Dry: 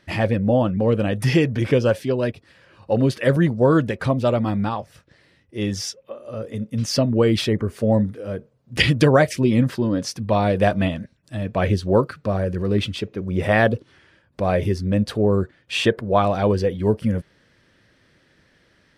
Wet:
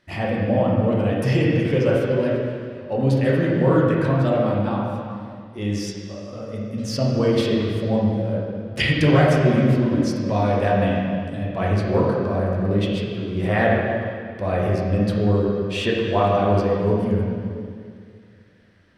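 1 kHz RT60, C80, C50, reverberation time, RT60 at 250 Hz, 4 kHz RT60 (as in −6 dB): 2.1 s, 1.0 dB, −1.0 dB, 2.2 s, 2.4 s, 2.1 s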